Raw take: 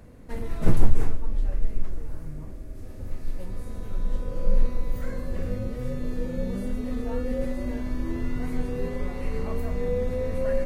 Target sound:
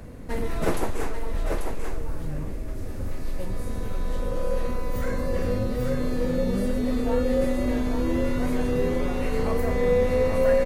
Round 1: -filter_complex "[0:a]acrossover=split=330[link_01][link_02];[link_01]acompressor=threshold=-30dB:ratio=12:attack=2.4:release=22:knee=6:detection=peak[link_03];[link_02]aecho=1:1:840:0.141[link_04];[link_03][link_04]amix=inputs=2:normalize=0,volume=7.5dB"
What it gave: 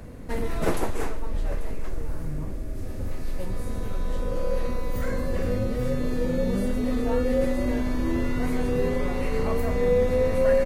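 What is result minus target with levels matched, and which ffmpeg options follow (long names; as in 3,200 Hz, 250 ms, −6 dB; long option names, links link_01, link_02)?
echo-to-direct −11.5 dB
-filter_complex "[0:a]acrossover=split=330[link_01][link_02];[link_01]acompressor=threshold=-30dB:ratio=12:attack=2.4:release=22:knee=6:detection=peak[link_03];[link_02]aecho=1:1:840:0.531[link_04];[link_03][link_04]amix=inputs=2:normalize=0,volume=7.5dB"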